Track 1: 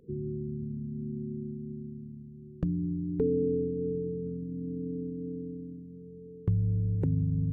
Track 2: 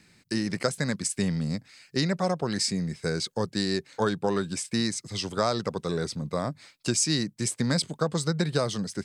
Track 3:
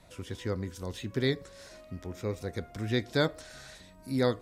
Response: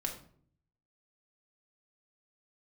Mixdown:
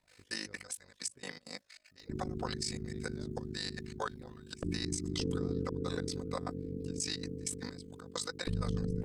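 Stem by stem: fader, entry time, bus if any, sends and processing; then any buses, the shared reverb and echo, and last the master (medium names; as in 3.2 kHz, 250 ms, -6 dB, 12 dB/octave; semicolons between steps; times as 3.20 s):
0.0 dB, 2.00 s, no send, spectral peaks clipped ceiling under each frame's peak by 18 dB
0.0 dB, 0.00 s, no send, high-pass 690 Hz 12 dB/octave; comb 4 ms, depth 60%; trance gate ".xx.xx.x.x...x." 195 bpm -24 dB
-15.5 dB, 0.00 s, no send, auto duck -11 dB, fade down 1.05 s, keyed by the second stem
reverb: none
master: AM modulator 51 Hz, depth 70%; peak limiter -24 dBFS, peak gain reduction 11 dB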